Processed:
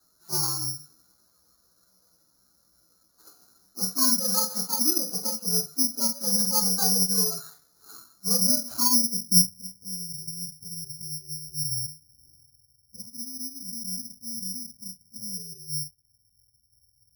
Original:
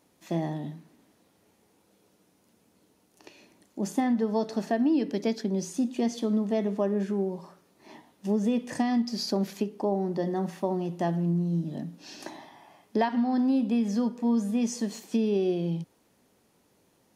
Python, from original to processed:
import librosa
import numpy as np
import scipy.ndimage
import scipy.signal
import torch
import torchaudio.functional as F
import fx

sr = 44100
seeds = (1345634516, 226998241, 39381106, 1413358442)

p1 = fx.partial_stretch(x, sr, pct=128)
p2 = scipy.signal.sosfilt(scipy.signal.butter(2, 3400.0, 'lowpass', fs=sr, output='sos'), p1)
p3 = fx.low_shelf(p2, sr, hz=98.0, db=11.5)
p4 = p3 + fx.room_early_taps(p3, sr, ms=(16, 48), db=(-3.5, -8.0), dry=0)
p5 = fx.filter_sweep_lowpass(p4, sr, from_hz=1400.0, to_hz=100.0, start_s=8.78, end_s=9.51, q=4.6)
p6 = (np.kron(p5[::8], np.eye(8)[0]) * 8)[:len(p5)]
y = p6 * 10.0 ** (-9.5 / 20.0)